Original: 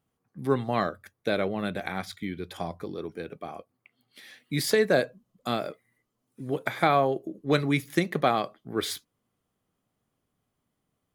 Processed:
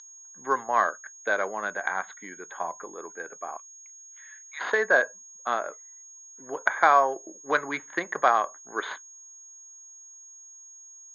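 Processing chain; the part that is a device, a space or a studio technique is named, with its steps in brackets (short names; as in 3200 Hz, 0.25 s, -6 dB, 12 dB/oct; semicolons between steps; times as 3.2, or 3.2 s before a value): Wiener smoothing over 9 samples; 3.57–4.71 Bessel high-pass 1900 Hz, order 4; toy sound module (decimation joined by straight lines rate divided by 4×; pulse-width modulation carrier 6600 Hz; speaker cabinet 610–4100 Hz, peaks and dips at 1000 Hz +10 dB, 1600 Hz +10 dB, 2600 Hz -8 dB, 3800 Hz +5 dB); gain +2 dB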